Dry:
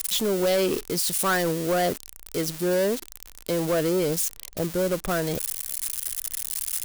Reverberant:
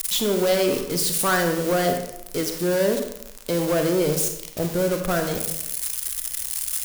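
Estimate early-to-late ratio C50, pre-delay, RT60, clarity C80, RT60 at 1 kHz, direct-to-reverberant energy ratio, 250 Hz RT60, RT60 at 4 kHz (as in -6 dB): 6.0 dB, 29 ms, 0.85 s, 8.5 dB, 0.90 s, 4.5 dB, 0.90 s, 0.60 s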